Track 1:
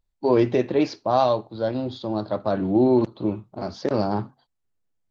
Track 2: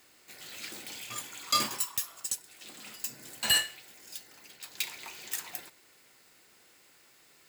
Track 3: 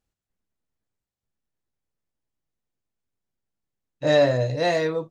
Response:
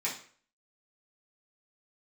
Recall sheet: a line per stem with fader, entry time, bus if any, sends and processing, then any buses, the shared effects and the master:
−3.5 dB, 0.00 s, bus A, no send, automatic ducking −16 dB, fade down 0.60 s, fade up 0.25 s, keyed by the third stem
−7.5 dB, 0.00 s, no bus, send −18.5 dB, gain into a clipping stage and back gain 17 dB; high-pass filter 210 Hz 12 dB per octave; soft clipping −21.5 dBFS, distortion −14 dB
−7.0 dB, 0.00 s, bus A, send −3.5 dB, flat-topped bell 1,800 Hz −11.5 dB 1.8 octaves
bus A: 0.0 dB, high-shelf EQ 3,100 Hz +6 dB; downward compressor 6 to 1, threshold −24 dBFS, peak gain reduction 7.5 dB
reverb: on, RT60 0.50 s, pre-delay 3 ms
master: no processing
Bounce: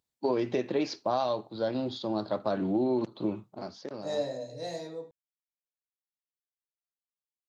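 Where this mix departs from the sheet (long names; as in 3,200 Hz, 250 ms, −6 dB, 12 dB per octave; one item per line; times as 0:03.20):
stem 2: muted
stem 3 −7.0 dB → −17.0 dB
master: extra high-pass filter 140 Hz 12 dB per octave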